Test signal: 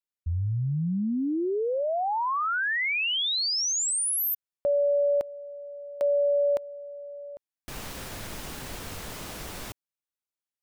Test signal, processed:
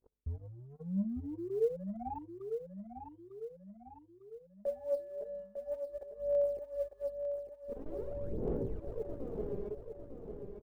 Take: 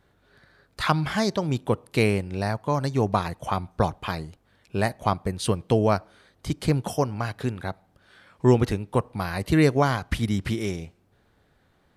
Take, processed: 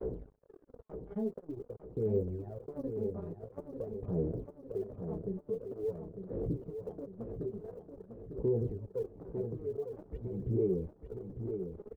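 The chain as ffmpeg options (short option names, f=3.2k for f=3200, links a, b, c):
-af "aeval=exprs='val(0)+0.5*0.02*sgn(val(0))':c=same,adynamicequalizer=threshold=0.0126:dfrequency=130:dqfactor=2:tfrequency=130:tqfactor=2:attack=5:release=100:ratio=0.375:range=2:mode=boostabove:tftype=bell,aeval=exprs='val(0)+0.00251*(sin(2*PI*50*n/s)+sin(2*PI*2*50*n/s)/2+sin(2*PI*3*50*n/s)/3+sin(2*PI*4*50*n/s)/4+sin(2*PI*5*50*n/s)/5)':c=same,flanger=delay=16:depth=2.4:speed=0.19,areverse,acompressor=threshold=-33dB:ratio=12:attack=23:release=43:knee=6:detection=rms,areverse,lowpass=f=440:t=q:w=4.9,alimiter=level_in=1.5dB:limit=-24dB:level=0:latency=1:release=220,volume=-1.5dB,aphaser=in_gain=1:out_gain=1:delay=5:decay=0.73:speed=0.47:type=sinusoidal,acompressor=mode=upward:threshold=-32dB:ratio=2.5:attack=4.9:release=108:knee=2.83:detection=peak,agate=range=-46dB:threshold=-36dB:ratio=16:release=35:detection=peak,aecho=1:1:901|1802|2703|3604|4505|5406:0.422|0.211|0.105|0.0527|0.0264|0.0132,crystalizer=i=1.5:c=0,volume=-8dB"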